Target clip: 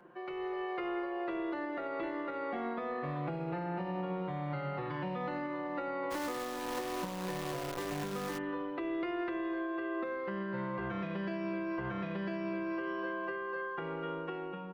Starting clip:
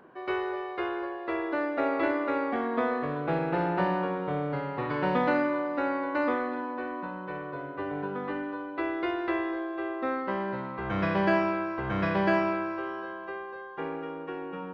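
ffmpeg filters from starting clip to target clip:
-filter_complex "[0:a]acrossover=split=270|710[s0][s1][s2];[s0]acompressor=threshold=0.0141:ratio=4[s3];[s1]acompressor=threshold=0.00891:ratio=4[s4];[s2]acompressor=threshold=0.0112:ratio=4[s5];[s3][s4][s5]amix=inputs=3:normalize=0,aecho=1:1:5.7:0.86,asplit=3[s6][s7][s8];[s6]afade=t=out:st=6.1:d=0.02[s9];[s7]acrusher=bits=7:dc=4:mix=0:aa=0.000001,afade=t=in:st=6.1:d=0.02,afade=t=out:st=8.37:d=0.02[s10];[s8]afade=t=in:st=8.37:d=0.02[s11];[s9][s10][s11]amix=inputs=3:normalize=0,alimiter=level_in=1.68:limit=0.0631:level=0:latency=1:release=195,volume=0.596,dynaudnorm=f=120:g=7:m=2,volume=0.501"

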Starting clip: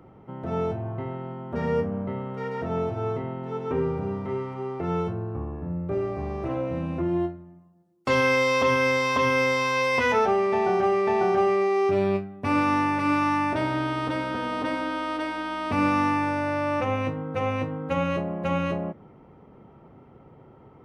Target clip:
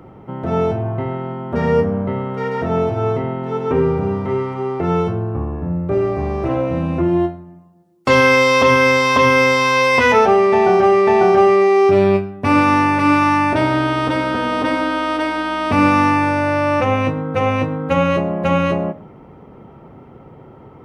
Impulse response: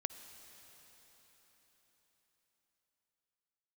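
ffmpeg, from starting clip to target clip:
-filter_complex "[0:a]asplit=2[s0][s1];[1:a]atrim=start_sample=2205,atrim=end_sample=6174[s2];[s1][s2]afir=irnorm=-1:irlink=0,volume=2.37[s3];[s0][s3]amix=inputs=2:normalize=0"

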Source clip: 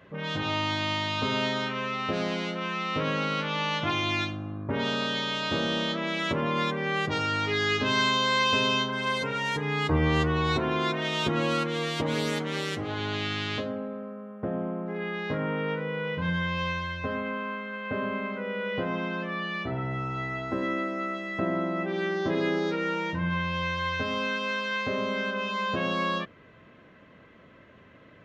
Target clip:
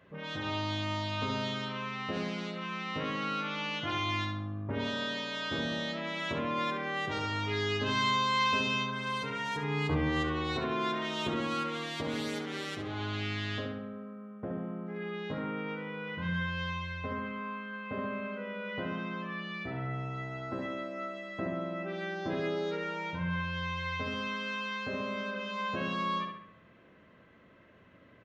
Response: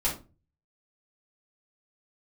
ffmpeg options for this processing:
-filter_complex "[0:a]asplit=2[s0][s1];[s1]adelay=68,lowpass=f=3600:p=1,volume=0.596,asplit=2[s2][s3];[s3]adelay=68,lowpass=f=3600:p=1,volume=0.53,asplit=2[s4][s5];[s5]adelay=68,lowpass=f=3600:p=1,volume=0.53,asplit=2[s6][s7];[s7]adelay=68,lowpass=f=3600:p=1,volume=0.53,asplit=2[s8][s9];[s9]adelay=68,lowpass=f=3600:p=1,volume=0.53,asplit=2[s10][s11];[s11]adelay=68,lowpass=f=3600:p=1,volume=0.53,asplit=2[s12][s13];[s13]adelay=68,lowpass=f=3600:p=1,volume=0.53[s14];[s0][s2][s4][s6][s8][s10][s12][s14]amix=inputs=8:normalize=0,volume=0.447"

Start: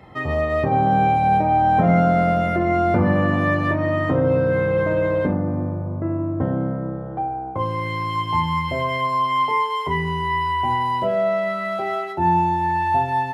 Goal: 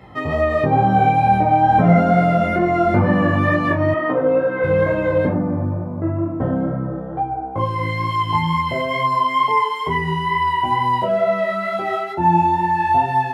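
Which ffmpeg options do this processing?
-filter_complex "[0:a]flanger=delay=16:depth=3.6:speed=2.2,asettb=1/sr,asplit=3[s0][s1][s2];[s0]atrim=end=3.944[s3];[s1]atrim=start=3.94:end=4.64,asetpts=PTS-STARTPTS,afade=t=in:d=0.004:c=qsin,afade=t=out:st=0.696:d=0.004:c=qsin,highpass=310,lowpass=2700[s4];[s2]atrim=start=4.636[s5];[s3][s4]acrossfade=d=0.004:c1=hsin:c2=qsin[s6];[s6][s5]acrossfade=d=0.004:c1=qsin:c2=hsin,volume=1.88"

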